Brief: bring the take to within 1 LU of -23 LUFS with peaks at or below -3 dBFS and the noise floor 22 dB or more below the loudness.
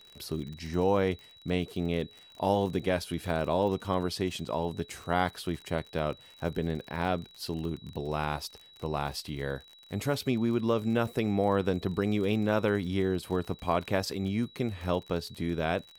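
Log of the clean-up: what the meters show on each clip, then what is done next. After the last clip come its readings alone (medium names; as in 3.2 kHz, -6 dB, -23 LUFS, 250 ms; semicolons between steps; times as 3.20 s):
tick rate 49 per s; steady tone 3.9 kHz; tone level -53 dBFS; loudness -31.0 LUFS; peak level -11.5 dBFS; loudness target -23.0 LUFS
-> de-click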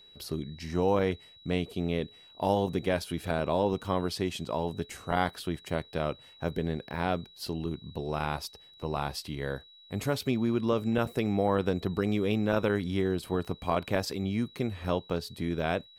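tick rate 1.1 per s; steady tone 3.9 kHz; tone level -53 dBFS
-> band-stop 3.9 kHz, Q 30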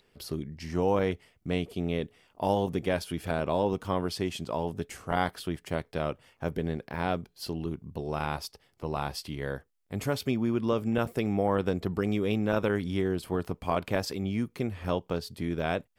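steady tone not found; loudness -31.0 LUFS; peak level -11.5 dBFS; loudness target -23.0 LUFS
-> trim +8 dB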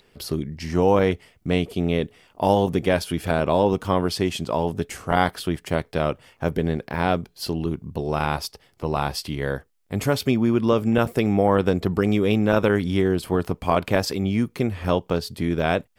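loudness -23.0 LUFS; peak level -3.5 dBFS; noise floor -61 dBFS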